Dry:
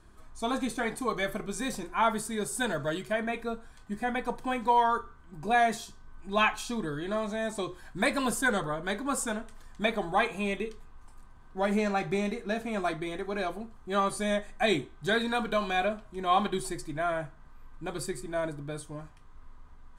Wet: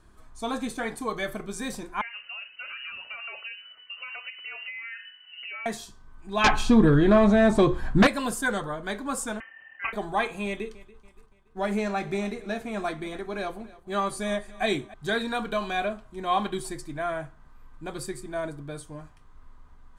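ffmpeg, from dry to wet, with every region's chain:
-filter_complex "[0:a]asettb=1/sr,asplit=3[s0][s1][s2];[s0]atrim=end=2.014[s3];[s1]atrim=start=2.01:end=5.66,asetpts=PTS-STARTPTS,afade=t=in:d=0.004:c=qsin,afade=t=out:st=3.646:d=0.004:c=qsin,acompressor=threshold=0.02:ratio=16:attack=3.2:release=140:knee=1:detection=peak,lowpass=f=2600:t=q:w=0.5098,lowpass=f=2600:t=q:w=0.6013,lowpass=f=2600:t=q:w=0.9,lowpass=f=2600:t=q:w=2.563,afreqshift=-3000[s4];[s2]atrim=start=5.656[s5];[s3][s4]acrossfade=d=0.004:c1=hsin:c2=qsin[s6];[s6][s5]acrossfade=d=0.004:c1=qsin:c2=hsin,asettb=1/sr,asplit=3[s7][s8][s9];[s7]atrim=end=6.444[s10];[s8]atrim=start=6.44:end=8.07,asetpts=PTS-STARTPTS,afade=t=in:d=0.004:c=qsin,afade=t=out:st=1.626:d=0.004:c=qsin,lowpass=f=2000:p=1,aeval=exprs='0.188*sin(PI/2*2.82*val(0)/0.188)':c=same,lowshelf=f=290:g=8[s11];[s9]atrim=start=8.066[s12];[s10][s11]acrossfade=d=0.004:c1=hsin:c2=qsin[s13];[s13][s12]acrossfade=d=0.004:c1=qsin:c2=hsin,asettb=1/sr,asplit=3[s14][s15][s16];[s14]atrim=end=9.404[s17];[s15]atrim=start=9.4:end=9.93,asetpts=PTS-STARTPTS,afade=t=in:d=0.004:c=qsin,afade=t=out:st=0.526:d=0.004:c=qsin,aeval=exprs='val(0)*sin(2*PI*1300*n/s)':c=same,lowpass=f=2600:t=q:w=0.5098,lowpass=f=2600:t=q:w=0.6013,lowpass=f=2600:t=q:w=0.9,lowpass=f=2600:t=q:w=2.563,afreqshift=-3100[s18];[s16]atrim=start=9.926[s19];[s17][s18]acrossfade=d=0.004:c1=hsin:c2=qsin[s20];[s20][s19]acrossfade=d=0.004:c1=qsin:c2=hsin,asettb=1/sr,asplit=3[s21][s22][s23];[s21]atrim=end=10.464[s24];[s22]atrim=start=10.46:end=14.94,asetpts=PTS-STARTPTS,afade=t=in:d=0.004:c=qsin,afade=t=out:st=4.476:d=0.004:c=qsin,agate=range=0.0224:threshold=0.00631:ratio=3:release=100:detection=peak,aecho=1:1:285|570|855:0.1|0.043|0.0185,atrim=end_sample=197568[s25];[s23]atrim=start=14.936[s26];[s24][s25]acrossfade=d=0.004:c1=hsin:c2=qsin[s27];[s27][s26]acrossfade=d=0.004:c1=qsin:c2=hsin"

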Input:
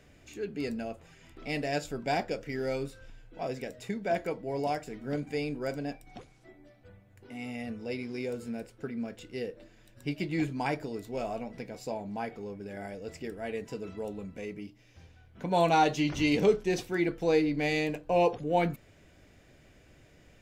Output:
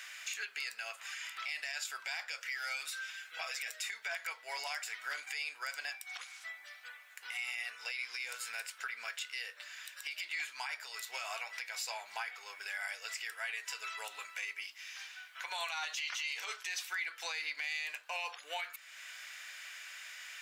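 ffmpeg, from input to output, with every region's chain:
-filter_complex "[0:a]asettb=1/sr,asplit=3[s0][s1][s2];[s0]atrim=end=2.574[s3];[s1]atrim=start=2.57:end=3.9,asetpts=PTS-STARTPTS,afade=t=in:d=0.004:c=qsin,afade=t=out:st=1.326:d=0.004:c=qsin,equalizer=f=940:w=6.6:g=-9,aecho=1:1:6.3:0.64,atrim=end_sample=58653,acompressor=threshold=0.0224:ratio=6:attack=3.2:release=140:knee=1:detection=peak[s4];[s2]atrim=start=3.896[s5];[s3][s4]acrossfade=d=0.004:c1=hsin:c2=qsin[s6];[s6][s5]acrossfade=d=0.004:c1=qsin:c2=hsin,highpass=f=1300:w=0.5412,highpass=f=1300:w=1.3066,acompressor=threshold=0.00126:ratio=2,alimiter=level_in=13.3:limit=0.0631:level=0:latency=1:release=57,volume=0.075,volume=7.94"

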